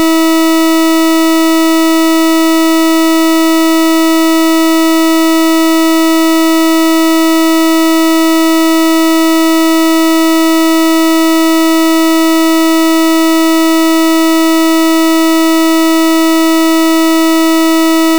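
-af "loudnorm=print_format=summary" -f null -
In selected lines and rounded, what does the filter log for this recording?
Input Integrated:     -8.6 LUFS
Input True Peak:      -6.0 dBTP
Input LRA:             0.0 LU
Input Threshold:     -18.6 LUFS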